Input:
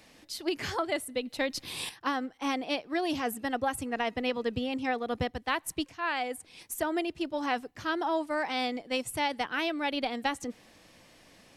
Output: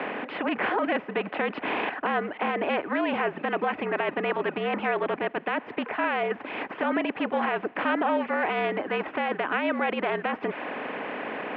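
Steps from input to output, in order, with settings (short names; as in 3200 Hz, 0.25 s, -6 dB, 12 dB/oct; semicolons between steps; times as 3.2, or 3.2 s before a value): per-bin compression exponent 0.4; reverb removal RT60 0.72 s; limiter -18.5 dBFS, peak gain reduction 8 dB; mistuned SSB -54 Hz 280–2700 Hz; gain +3 dB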